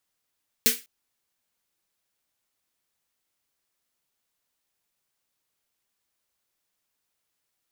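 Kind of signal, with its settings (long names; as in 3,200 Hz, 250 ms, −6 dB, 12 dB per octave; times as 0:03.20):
synth snare length 0.20 s, tones 240 Hz, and 450 Hz, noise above 1,700 Hz, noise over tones 10 dB, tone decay 0.20 s, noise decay 0.27 s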